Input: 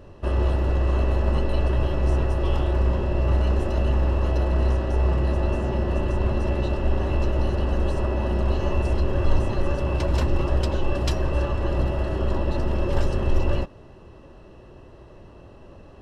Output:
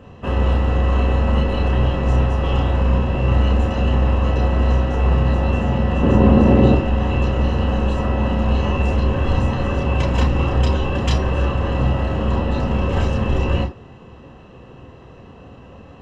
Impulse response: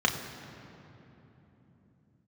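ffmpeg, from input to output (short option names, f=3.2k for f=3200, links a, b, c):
-filter_complex "[0:a]asettb=1/sr,asplit=3[a][b][c];[a]atrim=end=6.034[d];[b]atrim=start=6.03:end=6.75,asetpts=PTS-STARTPTS,afade=t=in:d=0.004:c=qsin,afade=t=out:st=0.716:d=0.004:c=qsin,equalizer=f=290:t=o:w=2.9:g=11[e];[c]atrim=start=6.746[f];[d][e]acrossfade=d=0.004:c1=hsin:c2=qsin[g];[g][f]acrossfade=d=0.004:c1=qsin:c2=hsin[h];[1:a]atrim=start_sample=2205,atrim=end_sample=3969[i];[h][i]afir=irnorm=-1:irlink=0,volume=-5dB"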